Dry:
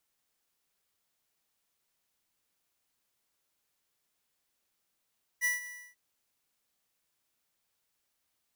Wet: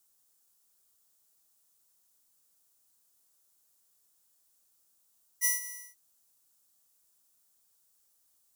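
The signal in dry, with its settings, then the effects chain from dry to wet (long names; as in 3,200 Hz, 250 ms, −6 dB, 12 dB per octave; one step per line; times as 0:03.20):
note with an ADSR envelope square 1,960 Hz, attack 37 ms, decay 153 ms, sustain −15.5 dB, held 0.24 s, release 300 ms −27.5 dBFS
drawn EQ curve 1,400 Hz 0 dB, 2,200 Hz −7 dB, 7,800 Hz +11 dB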